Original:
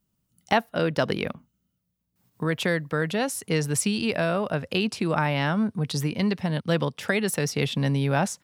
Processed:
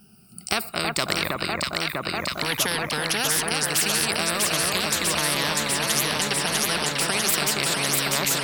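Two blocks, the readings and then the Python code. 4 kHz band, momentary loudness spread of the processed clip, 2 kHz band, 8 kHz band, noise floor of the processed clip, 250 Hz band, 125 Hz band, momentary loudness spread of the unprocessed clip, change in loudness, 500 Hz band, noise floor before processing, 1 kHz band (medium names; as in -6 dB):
+10.5 dB, 5 LU, +5.0 dB, +11.5 dB, -47 dBFS, -5.5 dB, -7.0 dB, 4 LU, +3.5 dB, -3.0 dB, -76 dBFS, +2.5 dB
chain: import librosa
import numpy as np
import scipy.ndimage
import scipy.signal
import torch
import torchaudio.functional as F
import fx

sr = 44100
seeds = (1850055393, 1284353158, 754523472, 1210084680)

y = fx.spec_ripple(x, sr, per_octave=1.1, drift_hz=-0.3, depth_db=19)
y = fx.echo_alternate(y, sr, ms=323, hz=1600.0, feedback_pct=84, wet_db=-4)
y = fx.spectral_comp(y, sr, ratio=4.0)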